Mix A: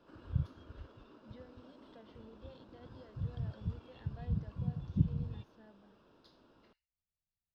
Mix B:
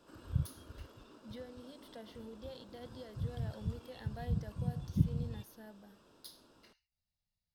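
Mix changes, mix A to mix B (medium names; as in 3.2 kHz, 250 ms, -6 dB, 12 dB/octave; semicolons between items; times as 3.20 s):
speech +6.5 dB; master: remove distance through air 190 m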